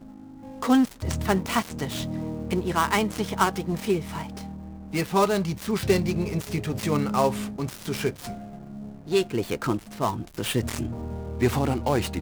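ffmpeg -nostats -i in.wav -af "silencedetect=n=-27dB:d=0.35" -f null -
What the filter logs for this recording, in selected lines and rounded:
silence_start: 0.00
silence_end: 0.62 | silence_duration: 0.62
silence_start: 4.41
silence_end: 4.93 | silence_duration: 0.53
silence_start: 8.33
silence_end: 9.11 | silence_duration: 0.78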